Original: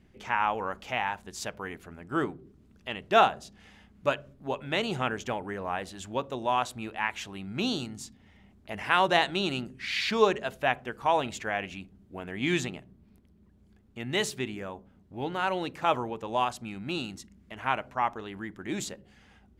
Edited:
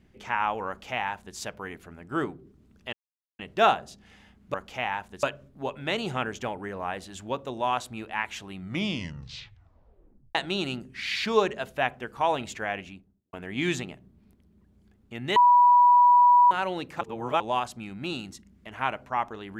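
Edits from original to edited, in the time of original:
0:00.68–0:01.37: duplicate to 0:04.08
0:02.93: splice in silence 0.46 s
0:07.39: tape stop 1.81 s
0:11.56–0:12.18: fade out and dull
0:14.21–0:15.36: beep over 976 Hz −13.5 dBFS
0:15.86–0:16.25: reverse

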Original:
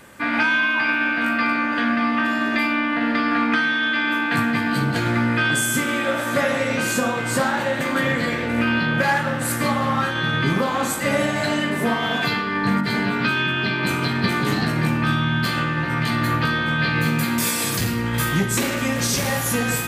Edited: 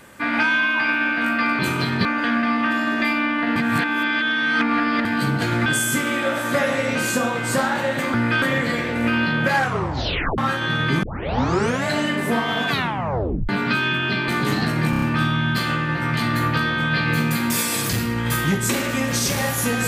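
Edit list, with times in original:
0:03.10–0:04.59: reverse
0:05.20–0:05.48: move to 0:07.96
0:09.11: tape stop 0.81 s
0:10.57: tape start 0.83 s
0:12.24: tape stop 0.79 s
0:13.82–0:14.28: move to 0:01.59
0:14.90: stutter 0.03 s, 5 plays

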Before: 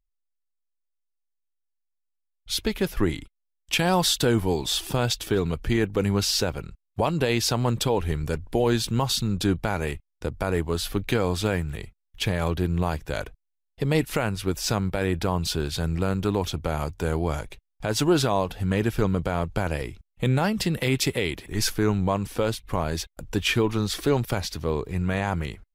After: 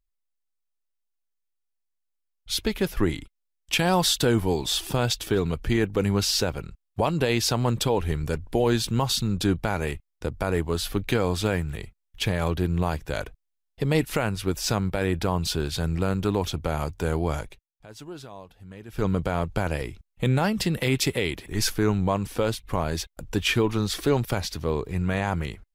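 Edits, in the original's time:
0:17.43–0:19.08: duck −19 dB, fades 0.20 s

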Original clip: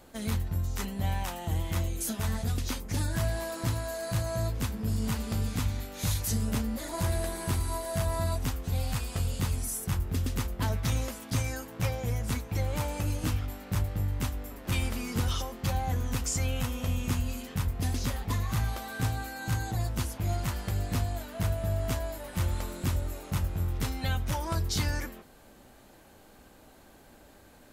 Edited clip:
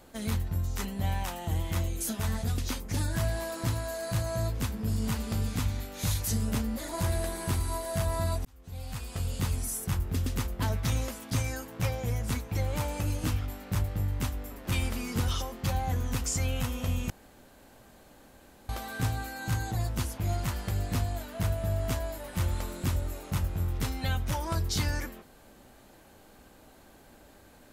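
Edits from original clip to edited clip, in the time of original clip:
0:08.45–0:09.46: fade in
0:17.10–0:18.69: fill with room tone

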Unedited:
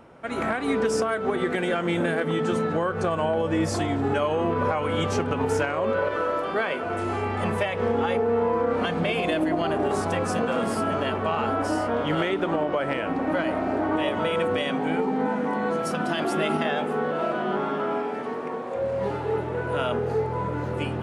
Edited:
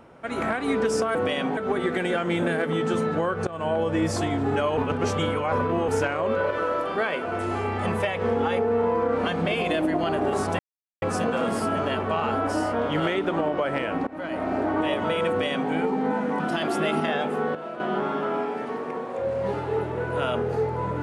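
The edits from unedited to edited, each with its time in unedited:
0:03.05–0:03.30: fade in, from −18.5 dB
0:04.35–0:05.46: reverse
0:10.17: splice in silence 0.43 s
0:13.22–0:13.66: fade in, from −21 dB
0:14.44–0:14.86: duplicate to 0:01.15
0:15.55–0:15.97: remove
0:17.12–0:17.37: clip gain −9 dB

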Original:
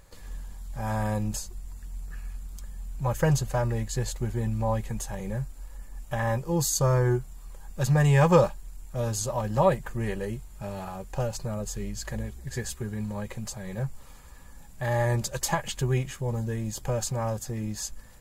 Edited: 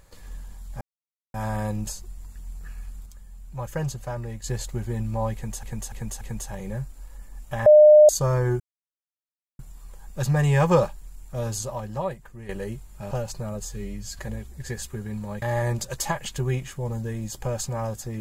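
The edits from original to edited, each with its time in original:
0:00.81: splice in silence 0.53 s
0:02.53–0:03.91: clip gain −5.5 dB
0:04.81–0:05.10: repeat, 4 plays
0:06.26–0:06.69: beep over 605 Hz −8 dBFS
0:07.20: splice in silence 0.99 s
0:09.16–0:10.10: fade out quadratic, to −11.5 dB
0:10.72–0:11.16: remove
0:11.70–0:12.06: time-stretch 1.5×
0:13.29–0:14.85: remove

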